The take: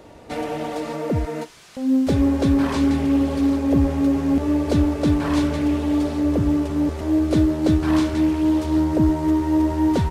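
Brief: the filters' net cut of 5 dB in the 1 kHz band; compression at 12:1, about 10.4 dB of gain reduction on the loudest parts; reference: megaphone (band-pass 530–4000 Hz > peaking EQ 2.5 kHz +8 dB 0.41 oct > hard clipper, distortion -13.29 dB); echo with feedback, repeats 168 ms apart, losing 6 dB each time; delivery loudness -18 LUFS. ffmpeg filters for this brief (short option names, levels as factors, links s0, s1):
-af "equalizer=f=1000:t=o:g=-5.5,acompressor=threshold=0.0631:ratio=12,highpass=530,lowpass=4000,equalizer=f=2500:t=o:w=0.41:g=8,aecho=1:1:168|336|504|672|840|1008:0.501|0.251|0.125|0.0626|0.0313|0.0157,asoftclip=type=hard:threshold=0.0251,volume=8.91"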